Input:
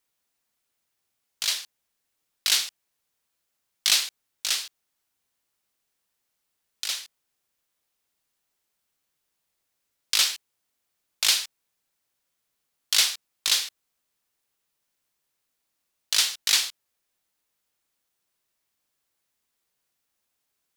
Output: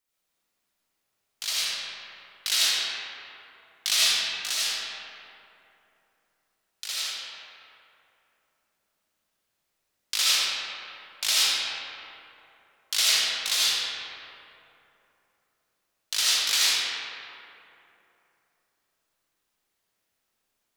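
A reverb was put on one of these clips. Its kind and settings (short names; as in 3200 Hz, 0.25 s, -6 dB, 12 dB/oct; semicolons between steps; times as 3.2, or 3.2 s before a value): digital reverb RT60 3 s, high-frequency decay 0.5×, pre-delay 40 ms, DRR -9 dB; gain -6 dB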